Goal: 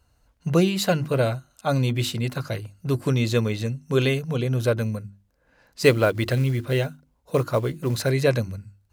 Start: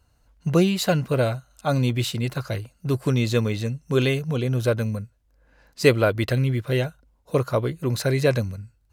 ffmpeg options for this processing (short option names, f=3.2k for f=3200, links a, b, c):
-filter_complex "[0:a]bandreject=f=50:t=h:w=6,bandreject=f=100:t=h:w=6,bandreject=f=150:t=h:w=6,bandreject=f=200:t=h:w=6,bandreject=f=250:t=h:w=6,bandreject=f=300:t=h:w=6,bandreject=f=350:t=h:w=6,asettb=1/sr,asplit=3[a][b][c];[a]atrim=end=5.824[d];[b]atrim=start=5.82:end=8.1,asetpts=PTS-STARTPTS,afade=t=in:d=0.004:c=qsin,afade=t=out:st=2.276:d=0.004:c=qsin,acrusher=bits=7:mode=log:mix=0:aa=0.000001[e];[c]atrim=start=8.096[f];[d][e]acrossfade=d=0.004:c1=hsin:c2=qsin[g];[g][f]acrossfade=d=0.004:c1=qsin:c2=hsin"